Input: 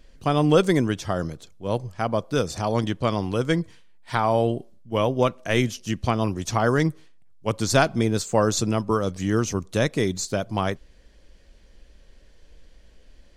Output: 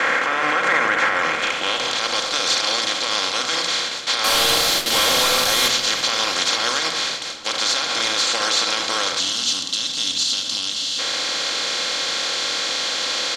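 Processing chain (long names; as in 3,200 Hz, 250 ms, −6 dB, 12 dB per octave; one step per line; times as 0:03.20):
compressor on every frequency bin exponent 0.2
noise gate with hold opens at −10 dBFS
band-pass filter sweep 1,900 Hz → 4,100 Hz, 0:01.04–0:02.08
dynamic equaliser 1,100 Hz, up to +4 dB, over −40 dBFS, Q 0.89
brickwall limiter −17.5 dBFS, peak gain reduction 12 dB
0:04.24–0:05.68: log-companded quantiser 2 bits
0:09.19–0:10.99: gain on a spectral selection 320–2,600 Hz −14 dB
echo with shifted repeats 338 ms, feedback 55%, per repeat −82 Hz, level −20 dB
convolution reverb RT60 0.95 s, pre-delay 4 ms, DRR 3.5 dB
downsampling to 32,000 Hz
level +8 dB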